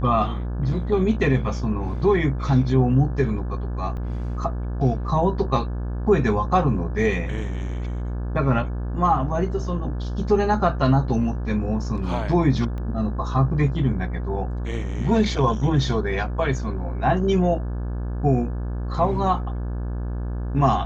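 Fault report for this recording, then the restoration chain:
buzz 60 Hz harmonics 29 -27 dBFS
3.97 gap 4.7 ms
12.78 pop -23 dBFS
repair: de-click; de-hum 60 Hz, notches 29; interpolate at 3.97, 4.7 ms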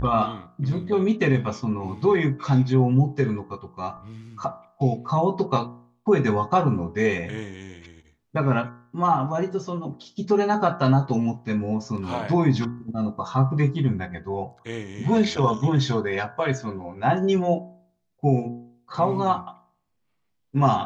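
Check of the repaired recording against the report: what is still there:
12.78 pop

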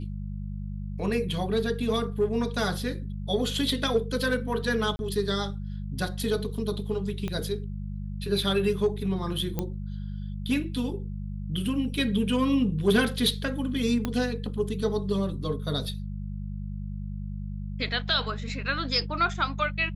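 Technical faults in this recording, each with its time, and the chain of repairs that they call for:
hum 50 Hz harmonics 4 -34 dBFS
4.96–4.99 gap 31 ms
7.28 pop -19 dBFS
9.59 pop -15 dBFS
14.05 pop -14 dBFS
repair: de-click; de-hum 50 Hz, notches 4; interpolate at 4.96, 31 ms

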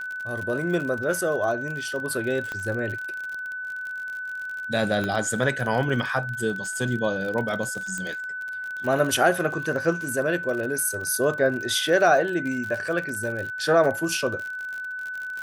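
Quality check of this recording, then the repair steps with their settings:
crackle 48/s -30 dBFS
tone 1500 Hz -30 dBFS
2.52 pop -18 dBFS
5.04 pop -15 dBFS
7.98 pop -18 dBFS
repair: de-click; notch 1500 Hz, Q 30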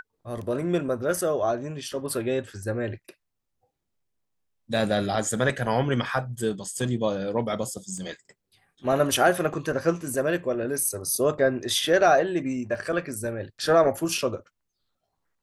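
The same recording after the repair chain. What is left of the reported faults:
7.98 pop

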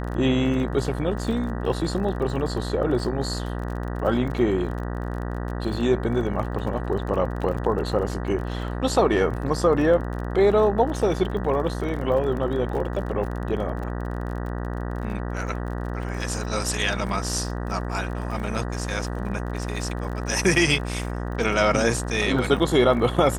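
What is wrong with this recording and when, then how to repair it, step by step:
buzz 60 Hz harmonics 32 -29 dBFS
crackle 33/s -32 dBFS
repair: de-click; de-hum 60 Hz, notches 32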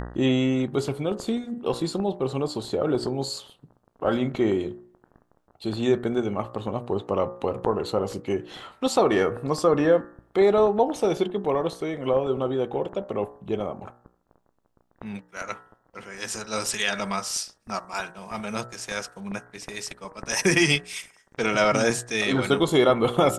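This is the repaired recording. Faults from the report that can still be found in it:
none

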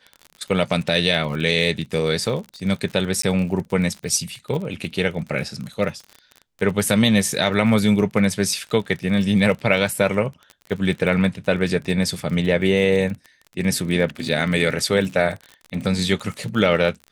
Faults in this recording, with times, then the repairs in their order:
crackle 35/s -28 dBFS
3.22–3.23 gap 14 ms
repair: de-click; interpolate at 3.22, 14 ms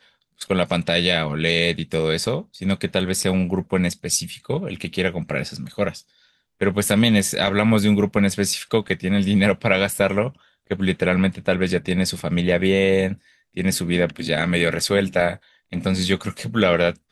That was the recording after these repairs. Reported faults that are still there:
none

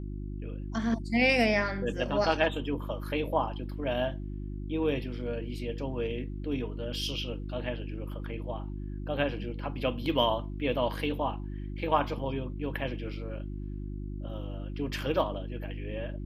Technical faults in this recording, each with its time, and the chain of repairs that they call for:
hum 50 Hz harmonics 7 -37 dBFS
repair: de-hum 50 Hz, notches 7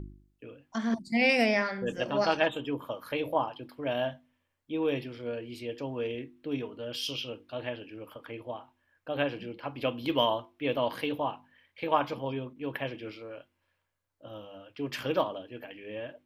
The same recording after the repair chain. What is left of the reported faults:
none

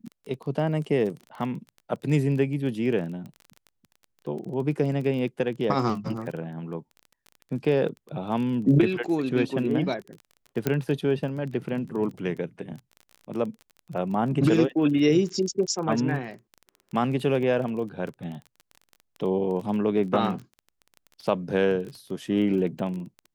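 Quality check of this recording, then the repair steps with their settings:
crackle 21/s -34 dBFS
10.67 pop -10 dBFS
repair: de-click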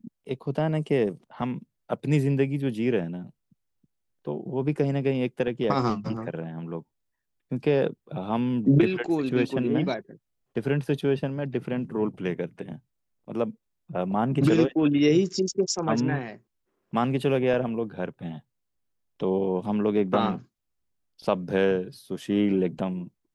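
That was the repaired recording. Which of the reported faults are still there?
none

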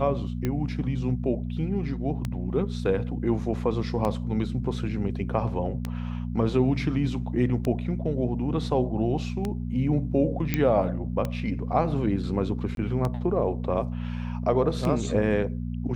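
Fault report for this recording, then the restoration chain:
hum 60 Hz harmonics 4 -31 dBFS
tick 33 1/3 rpm -15 dBFS
10.54 pop -10 dBFS
12.75–12.77 gap 22 ms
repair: de-click; de-hum 60 Hz, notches 4; interpolate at 12.75, 22 ms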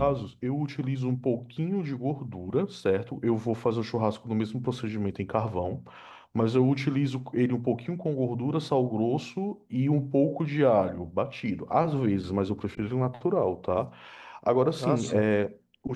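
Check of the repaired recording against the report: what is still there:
none

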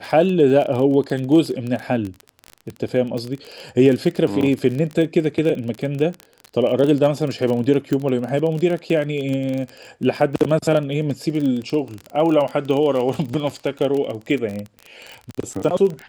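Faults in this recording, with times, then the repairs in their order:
crackle 27/s -23 dBFS
7.93 pop -11 dBFS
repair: de-click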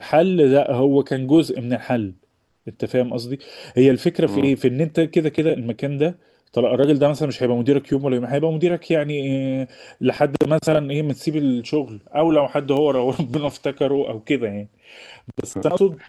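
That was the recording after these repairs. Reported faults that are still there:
none

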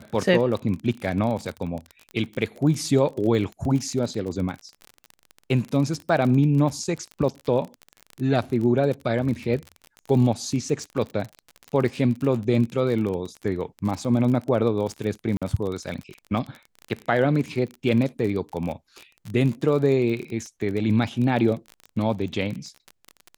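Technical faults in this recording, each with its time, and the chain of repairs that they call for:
crackle 35/s -29 dBFS
15.37–15.42 gap 46 ms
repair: de-click; interpolate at 15.37, 46 ms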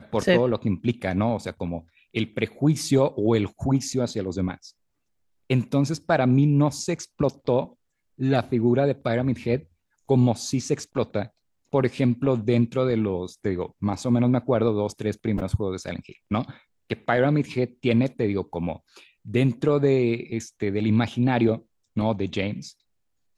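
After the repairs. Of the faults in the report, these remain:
none

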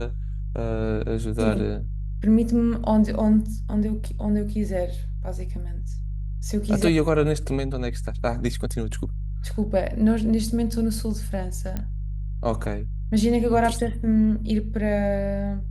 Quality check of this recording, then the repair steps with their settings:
hum 50 Hz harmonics 3 -29 dBFS
11.77 pop -16 dBFS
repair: de-click; de-hum 50 Hz, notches 3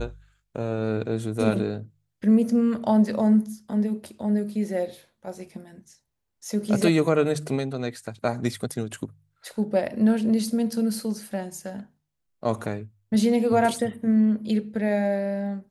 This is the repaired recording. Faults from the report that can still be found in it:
none

